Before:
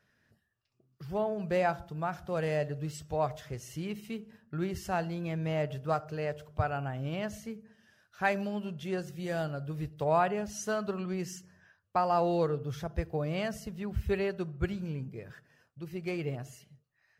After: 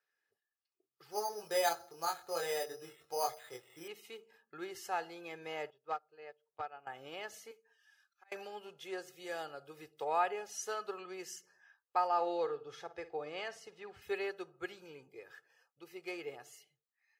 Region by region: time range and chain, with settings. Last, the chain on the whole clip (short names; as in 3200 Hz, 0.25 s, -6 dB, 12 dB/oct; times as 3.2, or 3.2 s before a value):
1.11–3.88 doubler 24 ms -2.5 dB + careless resampling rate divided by 8×, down filtered, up hold
5.7–6.87 hard clip -21.5 dBFS + air absorption 110 m + upward expander 2.5:1, over -40 dBFS
7.51–8.32 HPF 820 Hz 6 dB/oct + compressor 10:1, threshold -35 dBFS + auto swell 0.546 s
12.07–14.02 air absorption 64 m + flutter echo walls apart 9.3 m, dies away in 0.22 s
whole clip: HPF 540 Hz 12 dB/oct; spectral noise reduction 10 dB; comb 2.4 ms, depth 61%; gain -4 dB